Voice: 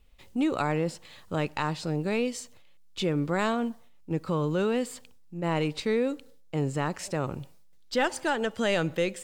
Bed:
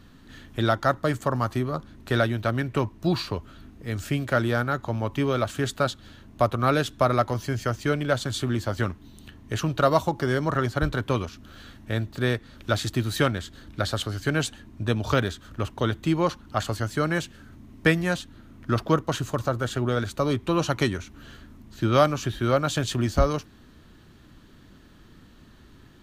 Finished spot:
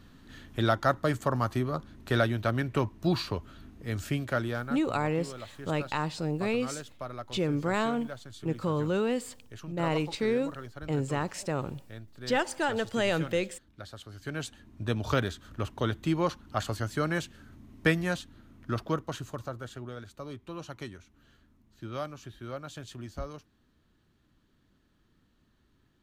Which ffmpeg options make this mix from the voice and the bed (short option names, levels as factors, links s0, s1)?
-filter_complex "[0:a]adelay=4350,volume=0.841[s0];[1:a]volume=3.35,afade=t=out:st=3.98:d=0.95:silence=0.177828,afade=t=in:st=14.03:d=1:silence=0.211349,afade=t=out:st=17.99:d=1.97:silence=0.237137[s1];[s0][s1]amix=inputs=2:normalize=0"